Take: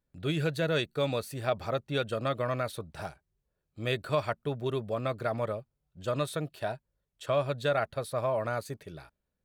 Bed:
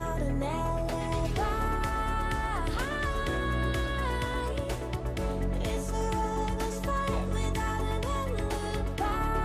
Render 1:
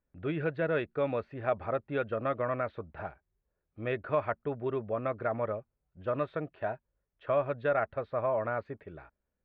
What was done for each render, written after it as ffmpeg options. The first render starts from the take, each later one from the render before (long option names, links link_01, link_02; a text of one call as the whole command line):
ffmpeg -i in.wav -af "lowpass=frequency=2200:width=0.5412,lowpass=frequency=2200:width=1.3066,equalizer=frequency=140:width_type=o:width=0.72:gain=-6.5" out.wav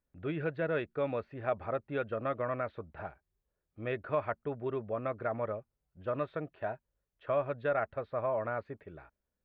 ffmpeg -i in.wav -af "volume=-2.5dB" out.wav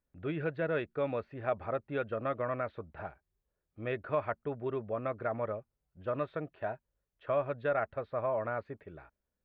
ffmpeg -i in.wav -af anull out.wav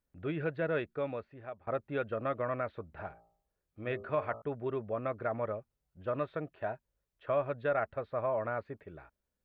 ffmpeg -i in.wav -filter_complex "[0:a]asettb=1/sr,asplit=3[link_01][link_02][link_03];[link_01]atrim=end=2.874[link_04];[link_02]atrim=start=2.87:end=4.42,asetpts=PTS-STARTPTS,afade=type=in:duration=0.004:curve=qsin,afade=type=out:start_time=1.546:duration=0.004:curve=qsin,bandreject=frequency=56.66:width_type=h:width=4,bandreject=frequency=113.32:width_type=h:width=4,bandreject=frequency=169.98:width_type=h:width=4,bandreject=frequency=226.64:width_type=h:width=4,bandreject=frequency=283.3:width_type=h:width=4,bandreject=frequency=339.96:width_type=h:width=4,bandreject=frequency=396.62:width_type=h:width=4,bandreject=frequency=453.28:width_type=h:width=4,bandreject=frequency=509.94:width_type=h:width=4,bandreject=frequency=566.6:width_type=h:width=4,bandreject=frequency=623.26:width_type=h:width=4,bandreject=frequency=679.92:width_type=h:width=4,bandreject=frequency=736.58:width_type=h:width=4,bandreject=frequency=793.24:width_type=h:width=4,bandreject=frequency=849.9:width_type=h:width=4,bandreject=frequency=906.56:width_type=h:width=4,bandreject=frequency=963.22:width_type=h:width=4,bandreject=frequency=1019.88:width_type=h:width=4,bandreject=frequency=1076.54:width_type=h:width=4,bandreject=frequency=1133.2:width_type=h:width=4,bandreject=frequency=1189.86:width_type=h:width=4,bandreject=frequency=1246.52:width_type=h:width=4,bandreject=frequency=1303.18:width_type=h:width=4[link_05];[link_03]atrim=start=4.416[link_06];[link_04][link_05]acrossfade=duration=0.004:curve1=hsin:curve2=qsin[link_07];[link_07][link_06]acrossfade=duration=0.004:curve1=qsin:curve2=hsin,asplit=2[link_08][link_09];[link_08]atrim=end=1.67,asetpts=PTS-STARTPTS,afade=type=out:start_time=0.8:duration=0.87:silence=0.0944061[link_10];[link_09]atrim=start=1.67,asetpts=PTS-STARTPTS,afade=type=in:duration=0.004:curve=hsin:silence=0.0944061[link_11];[link_10][link_11]concat=n=2:v=0:a=1" out.wav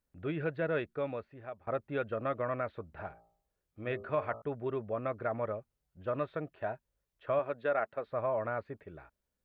ffmpeg -i in.wav -filter_complex "[0:a]asettb=1/sr,asplit=3[link_01][link_02][link_03];[link_01]atrim=end=7.394[link_04];[link_02]atrim=start=7.39:end=8.07,asetpts=PTS-STARTPTS,afade=type=in:duration=0.004:curve=qsin,afade=type=out:start_time=0.676:duration=0.004:curve=qsin,highpass=220[link_05];[link_03]atrim=start=8.066[link_06];[link_04][link_05]acrossfade=duration=0.004:curve1=hsin:curve2=qsin[link_07];[link_07][link_06]acrossfade=duration=0.004:curve1=qsin:curve2=hsin" out.wav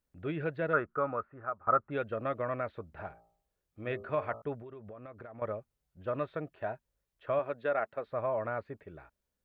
ffmpeg -i in.wav -filter_complex "[0:a]asettb=1/sr,asplit=3[link_01][link_02][link_03];[link_01]atrim=end=0.734[link_04];[link_02]atrim=start=0.73:end=1.91,asetpts=PTS-STARTPTS,afade=type=in:duration=0.004:curve=qsin,afade=type=out:start_time=1.176:duration=0.004:curve=qsin,lowpass=frequency=1300:width_type=q:width=7.2[link_05];[link_03]atrim=start=1.906[link_06];[link_04][link_05]acrossfade=duration=0.004:curve1=hsin:curve2=qsin[link_07];[link_07][link_06]acrossfade=duration=0.004:curve1=qsin:curve2=hsin,asettb=1/sr,asplit=3[link_08][link_09][link_10];[link_08]atrim=end=4.594[link_11];[link_09]atrim=start=4.59:end=5.42,asetpts=PTS-STARTPTS,afade=type=in:duration=0.004:curve=qsin,afade=type=out:start_time=0.826:duration=0.004:curve=qsin,acompressor=threshold=-43dB:ratio=16:attack=3.2:release=140:knee=1:detection=peak[link_12];[link_10]atrim=start=5.416[link_13];[link_11][link_12]acrossfade=duration=0.004:curve1=hsin:curve2=qsin[link_14];[link_14][link_13]acrossfade=duration=0.004:curve1=qsin:curve2=hsin" out.wav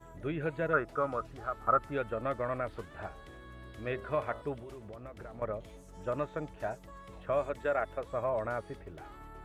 ffmpeg -i in.wav -i bed.wav -filter_complex "[1:a]volume=-20.5dB[link_01];[0:a][link_01]amix=inputs=2:normalize=0" out.wav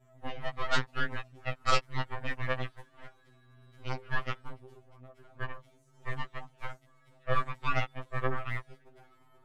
ffmpeg -i in.wav -af "aeval=exprs='0.188*(cos(1*acos(clip(val(0)/0.188,-1,1)))-cos(1*PI/2))+0.0531*(cos(6*acos(clip(val(0)/0.188,-1,1)))-cos(6*PI/2))+0.0376*(cos(7*acos(clip(val(0)/0.188,-1,1)))-cos(7*PI/2))':channel_layout=same,afftfilt=real='re*2.45*eq(mod(b,6),0)':imag='im*2.45*eq(mod(b,6),0)':win_size=2048:overlap=0.75" out.wav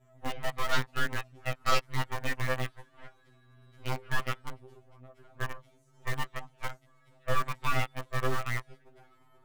ffmpeg -i in.wav -filter_complex "[0:a]asplit=2[link_01][link_02];[link_02]acrusher=bits=4:mix=0:aa=0.000001,volume=-9dB[link_03];[link_01][link_03]amix=inputs=2:normalize=0,asoftclip=type=tanh:threshold=-14.5dB" out.wav